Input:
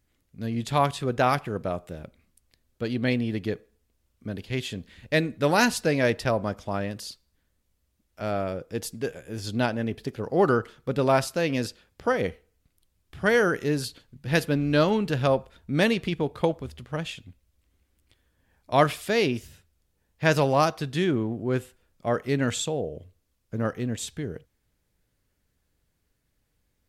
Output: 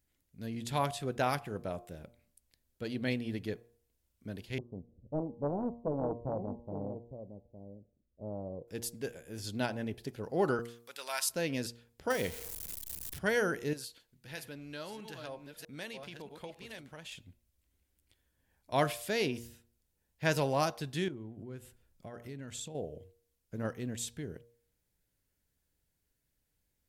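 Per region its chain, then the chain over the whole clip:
0:04.58–0:08.68: Butterworth low-pass 580 Hz 48 dB per octave + single-tap delay 860 ms −10 dB + highs frequency-modulated by the lows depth 0.76 ms
0:10.59–0:11.29: high-pass filter 1,300 Hz + high-shelf EQ 4,100 Hz +8.5 dB
0:12.10–0:13.19: converter with a step at zero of −37.5 dBFS + high-shelf EQ 4,000 Hz +11 dB
0:13.73–0:17.12: delay that plays each chunk backwards 640 ms, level −8 dB + low-shelf EQ 460 Hz −10.5 dB + downward compressor 2 to 1, threshold −38 dBFS
0:21.08–0:22.75: low-shelf EQ 180 Hz +7.5 dB + downward compressor 4 to 1, threshold −34 dBFS
whole clip: high-shelf EQ 6,700 Hz +8.5 dB; notch filter 1,200 Hz, Q 11; hum removal 117.8 Hz, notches 10; level −8.5 dB

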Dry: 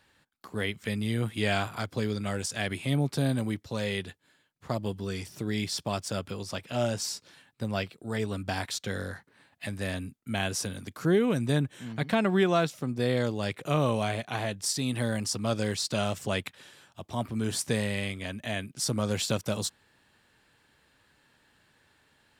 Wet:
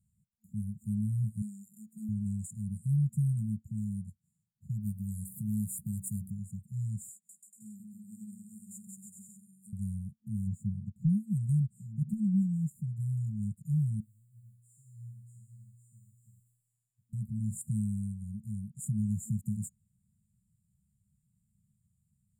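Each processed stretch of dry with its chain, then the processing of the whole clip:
0:01.42–0:02.09: high-pass filter 250 Hz 24 dB per octave + phaser with its sweep stopped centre 600 Hz, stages 8 + multiband upward and downward compressor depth 100%
0:04.80–0:06.30: high shelf with overshoot 7,900 Hz +14 dB, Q 1.5 + hum removal 63.79 Hz, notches 29
0:07.11–0:09.73: high-pass filter 290 Hz 24 dB per octave + bouncing-ball delay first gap 180 ms, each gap 0.75×, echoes 6, each echo −2 dB
0:10.47–0:11.09: low-pass filter 5,000 Hz + high-shelf EQ 2,600 Hz −10.5 dB + leveller curve on the samples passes 1
0:14.00–0:17.13: one scale factor per block 5 bits + downward compressor 1.5 to 1, threshold −41 dBFS + tuned comb filter 120 Hz, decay 1.2 s, mix 100%
whole clip: bass and treble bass +8 dB, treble −5 dB; brick-wall band-stop 220–6,900 Hz; low-shelf EQ 84 Hz −9.5 dB; level −3.5 dB

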